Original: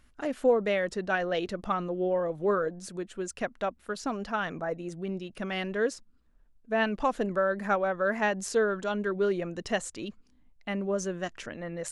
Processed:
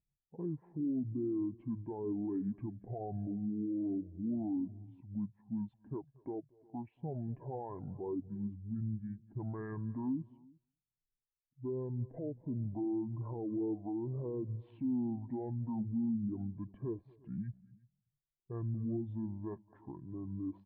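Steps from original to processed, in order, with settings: level-controlled noise filter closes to 700 Hz, open at -22.5 dBFS; band-stop 2.6 kHz, Q 9.7; low-pass that closes with the level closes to 800 Hz, closed at -23.5 dBFS; high-pass 140 Hz 6 dB/octave; peaking EQ 2.1 kHz -9.5 dB 0.24 oct; peak limiter -30 dBFS, peak gain reduction 15 dB; delay 205 ms -17 dB; reverberation, pre-delay 134 ms, DRR 17 dB; speed mistake 78 rpm record played at 45 rpm; spectral contrast expander 1.5:1

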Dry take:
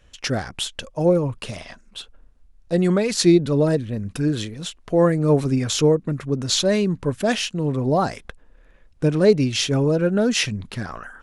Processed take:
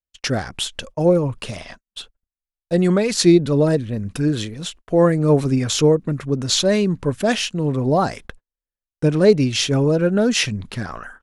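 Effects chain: gate -40 dBFS, range -45 dB; trim +2 dB

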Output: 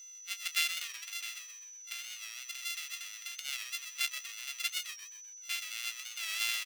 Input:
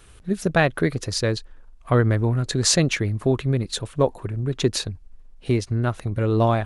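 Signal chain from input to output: sorted samples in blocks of 64 samples; 0.78–3.39 s: compression, threshold -25 dBFS, peak gain reduction 11 dB; whistle 6 kHz -41 dBFS; ladder high-pass 2.2 kHz, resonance 40%; frequency-shifting echo 127 ms, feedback 41%, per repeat -110 Hz, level -9 dB; warped record 45 rpm, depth 100 cents

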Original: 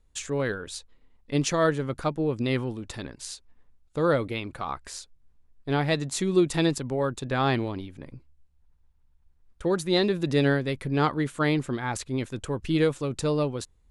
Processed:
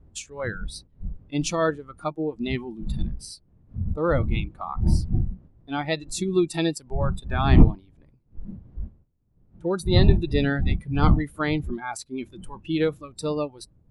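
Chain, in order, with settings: wind noise 120 Hz -25 dBFS; spectral noise reduction 18 dB

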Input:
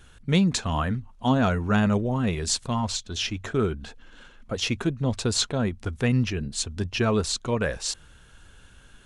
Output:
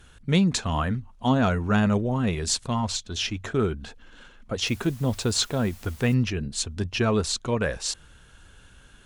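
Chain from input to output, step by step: 4.65–6.13 s: added noise white -51 dBFS; Chebyshev shaper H 4 -38 dB, 5 -43 dB, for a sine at -9 dBFS

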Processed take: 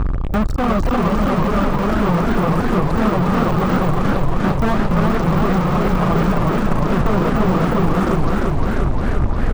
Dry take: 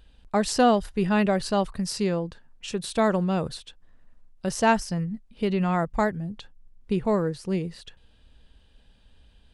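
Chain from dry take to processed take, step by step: local Wiener filter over 25 samples; tilt EQ -4.5 dB/octave; in parallel at +2.5 dB: peak limiter -14 dBFS, peak gain reduction 11 dB; on the sum: compression 12:1, threshold -13 dBFS, peak gain reduction 11 dB; on a send: bouncing-ball echo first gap 290 ms, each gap 0.65×, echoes 5; on the sum: fuzz box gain 41 dB, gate -48 dBFS; reverb removal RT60 1.7 s; de-esser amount 65%; peaking EQ 1.2 kHz +12.5 dB 0.32 oct; saturation -12 dBFS, distortion -22 dB; modulated delay 349 ms, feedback 78%, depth 146 cents, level -3.5 dB

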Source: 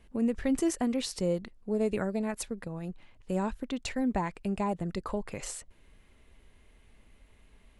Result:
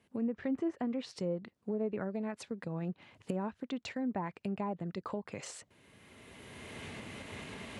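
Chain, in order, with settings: recorder AGC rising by 18 dB/s; high-pass 100 Hz 24 dB/octave; low-pass that closes with the level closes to 1.4 kHz, closed at -24 dBFS; trim -6 dB

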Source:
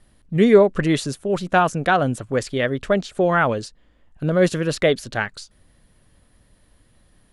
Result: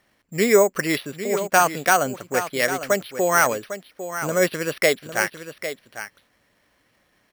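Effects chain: careless resampling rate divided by 6×, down filtered, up hold; high-pass 650 Hz 6 dB/octave; peaking EQ 2.2 kHz +5 dB 0.37 oct; on a send: delay 802 ms -11 dB; on the sum: trim +2 dB

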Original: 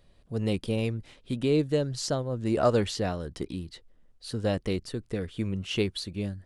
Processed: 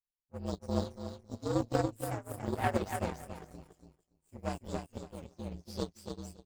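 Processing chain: frequency axis rescaled in octaves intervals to 122%; feedback delay 284 ms, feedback 35%, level -3 dB; power-law waveshaper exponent 2

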